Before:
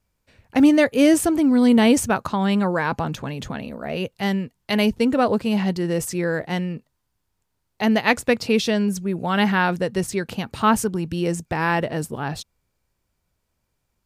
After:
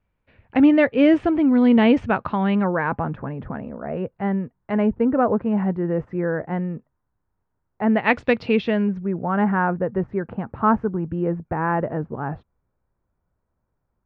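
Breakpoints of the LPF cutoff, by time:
LPF 24 dB/oct
2.36 s 2800 Hz
3.3 s 1600 Hz
7.85 s 1600 Hz
8.24 s 3900 Hz
9.28 s 1500 Hz

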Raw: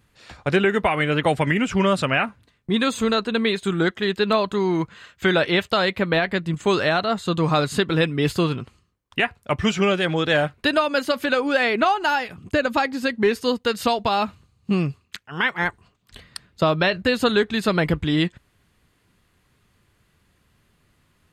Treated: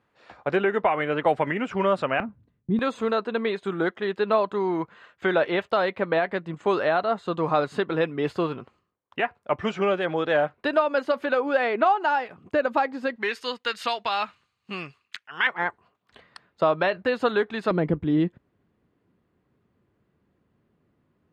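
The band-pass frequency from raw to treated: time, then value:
band-pass, Q 0.79
720 Hz
from 2.2 s 150 Hz
from 2.79 s 710 Hz
from 13.16 s 2000 Hz
from 15.47 s 790 Hz
from 17.71 s 320 Hz

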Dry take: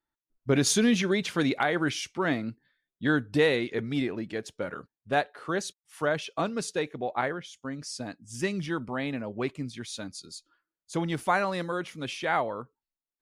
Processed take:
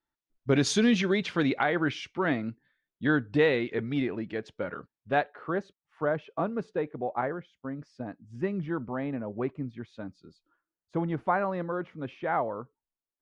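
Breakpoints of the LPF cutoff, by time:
0.9 s 5100 Hz
1.7 s 3000 Hz
5.14 s 3000 Hz
5.65 s 1300 Hz

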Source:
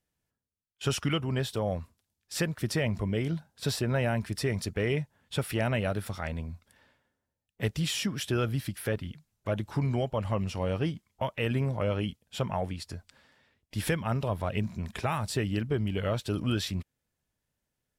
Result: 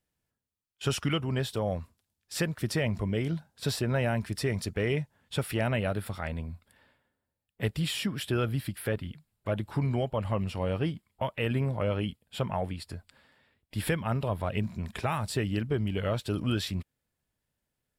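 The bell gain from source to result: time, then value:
bell 6100 Hz 0.3 oct
5.41 s -2.5 dB
5.81 s -13 dB
14.24 s -13 dB
14.91 s -5 dB

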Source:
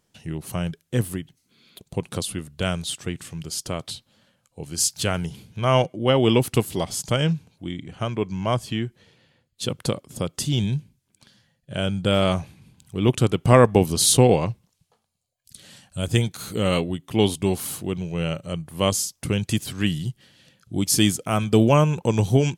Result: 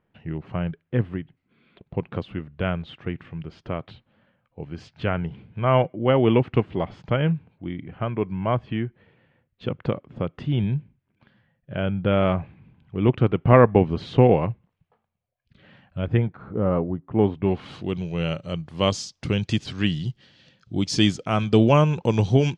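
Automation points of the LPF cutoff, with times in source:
LPF 24 dB/oct
16.03 s 2400 Hz
16.52 s 1300 Hz
17.03 s 1300 Hz
17.47 s 2300 Hz
17.91 s 5300 Hz

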